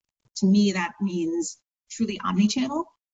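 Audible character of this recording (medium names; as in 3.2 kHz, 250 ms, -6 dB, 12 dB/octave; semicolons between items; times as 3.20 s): phasing stages 2, 0.78 Hz, lowest notch 540–2100 Hz; a quantiser's noise floor 12-bit, dither none; tremolo triangle 0.9 Hz, depth 60%; Vorbis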